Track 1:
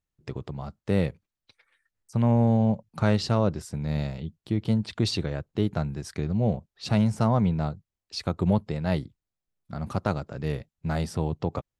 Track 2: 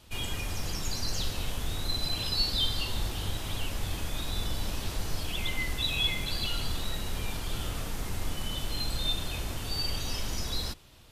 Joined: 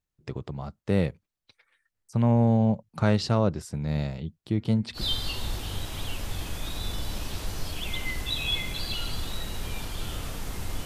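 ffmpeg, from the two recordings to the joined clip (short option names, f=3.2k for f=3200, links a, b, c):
-filter_complex "[0:a]asettb=1/sr,asplit=3[a][b][c];[a]atrim=end=4.474[d];[b]atrim=start=4.47:end=5.03,asetpts=PTS-STARTPTS,afade=t=in:d=0.004:c=qsin,afade=t=out:st=0.556:d=0.004:c=qsin,bandreject=f=235.4:t=h:w=4,bandreject=f=470.8:t=h:w=4,bandreject=f=706.2:t=h:w=4,bandreject=f=941.6:t=h:w=4,bandreject=f=1.177k:t=h:w=4,bandreject=f=1.4124k:t=h:w=4,bandreject=f=1.6478k:t=h:w=4,bandreject=f=1.8832k:t=h:w=4,bandreject=f=2.1186k:t=h:w=4,bandreject=f=2.354k:t=h:w=4,bandreject=f=2.5894k:t=h:w=4[e];[c]atrim=start=5.026[f];[d][e]acrossfade=d=0.004:c1=hsin:c2=qsin[g];[g][f]acrossfade=d=0.004:c1=qsin:c2=hsin,apad=whole_dur=10.85,atrim=end=10.85,atrim=end=5.03,asetpts=PTS-STARTPTS[h];[1:a]atrim=start=2.45:end=8.37,asetpts=PTS-STARTPTS[i];[h][i]acrossfade=d=0.1:c1=tri:c2=tri"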